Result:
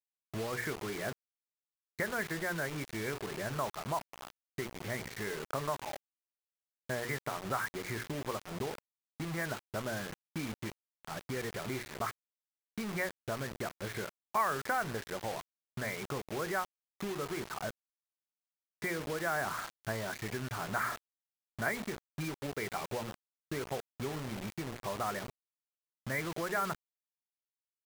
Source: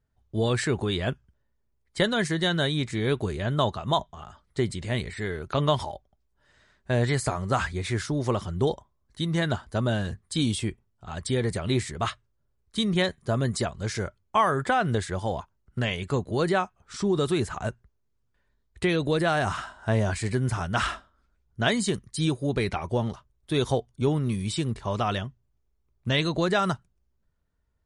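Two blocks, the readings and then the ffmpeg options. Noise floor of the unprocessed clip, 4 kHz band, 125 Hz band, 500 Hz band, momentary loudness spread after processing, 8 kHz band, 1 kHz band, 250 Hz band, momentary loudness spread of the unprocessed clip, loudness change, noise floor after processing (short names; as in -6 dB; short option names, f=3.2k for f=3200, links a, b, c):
-72 dBFS, -14.0 dB, -15.5 dB, -11.0 dB, 10 LU, -7.0 dB, -8.0 dB, -13.0 dB, 10 LU, -10.5 dB, under -85 dBFS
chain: -filter_complex "[0:a]afftfilt=real='re*between(b*sr/4096,100,2400)':imag='im*between(b*sr/4096,100,2400)':win_size=4096:overlap=0.75,bandreject=f=60:t=h:w=6,bandreject=f=120:t=h:w=6,bandreject=f=180:t=h:w=6,bandreject=f=240:t=h:w=6,bandreject=f=300:t=h:w=6,bandreject=f=360:t=h:w=6,bandreject=f=420:t=h:w=6,bandreject=f=480:t=h:w=6,adynamicequalizer=threshold=0.0126:dfrequency=490:dqfactor=0.84:tfrequency=490:tqfactor=0.84:attack=5:release=100:ratio=0.375:range=2.5:mode=boostabove:tftype=bell,acrossover=split=1100[a][b];[a]acompressor=threshold=-32dB:ratio=5[c];[c][b]amix=inputs=2:normalize=0,acrusher=bits=5:mix=0:aa=0.000001,volume=-5.5dB"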